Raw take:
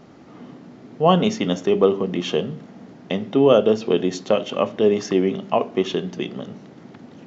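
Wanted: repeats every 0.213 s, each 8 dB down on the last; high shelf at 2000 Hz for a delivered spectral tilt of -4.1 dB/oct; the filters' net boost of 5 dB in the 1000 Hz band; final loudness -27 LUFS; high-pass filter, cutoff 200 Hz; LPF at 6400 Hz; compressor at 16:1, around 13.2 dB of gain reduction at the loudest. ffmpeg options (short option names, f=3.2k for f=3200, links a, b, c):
-af "highpass=200,lowpass=6.4k,equalizer=f=1k:t=o:g=5,highshelf=f=2k:g=7,acompressor=threshold=-20dB:ratio=16,aecho=1:1:213|426|639|852|1065:0.398|0.159|0.0637|0.0255|0.0102,volume=-0.5dB"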